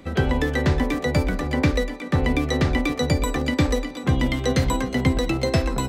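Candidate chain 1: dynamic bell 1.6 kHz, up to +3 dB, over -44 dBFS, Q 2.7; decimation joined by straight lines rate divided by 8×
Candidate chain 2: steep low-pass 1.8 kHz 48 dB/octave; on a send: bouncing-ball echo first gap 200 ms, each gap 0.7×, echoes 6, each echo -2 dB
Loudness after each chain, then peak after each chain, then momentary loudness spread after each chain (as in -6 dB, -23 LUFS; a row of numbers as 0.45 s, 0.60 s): -23.0 LUFS, -20.0 LUFS; -8.0 dBFS, -6.0 dBFS; 2 LU, 1 LU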